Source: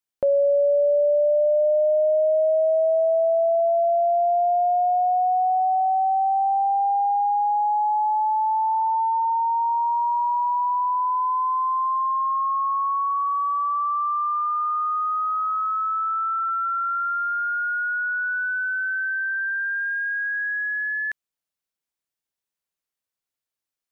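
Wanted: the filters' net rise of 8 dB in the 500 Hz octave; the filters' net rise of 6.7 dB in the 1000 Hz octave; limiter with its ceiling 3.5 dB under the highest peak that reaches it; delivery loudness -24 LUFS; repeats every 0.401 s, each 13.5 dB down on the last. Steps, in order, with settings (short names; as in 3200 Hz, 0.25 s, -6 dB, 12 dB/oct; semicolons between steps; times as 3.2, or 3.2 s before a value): bell 500 Hz +8.5 dB; bell 1000 Hz +5.5 dB; limiter -9.5 dBFS; feedback echo 0.401 s, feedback 21%, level -13.5 dB; gain -8.5 dB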